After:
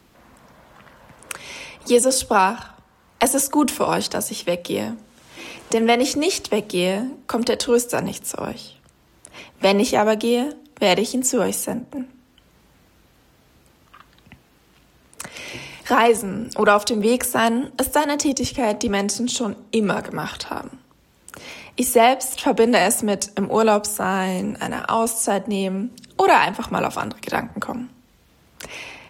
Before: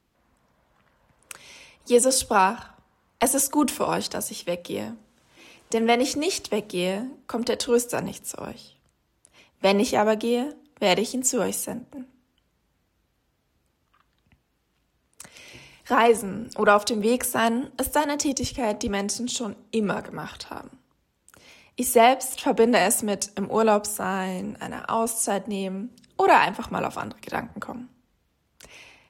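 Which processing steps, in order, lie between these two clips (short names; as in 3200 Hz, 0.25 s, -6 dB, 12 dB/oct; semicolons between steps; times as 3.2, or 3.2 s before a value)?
three-band squash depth 40%; gain +4.5 dB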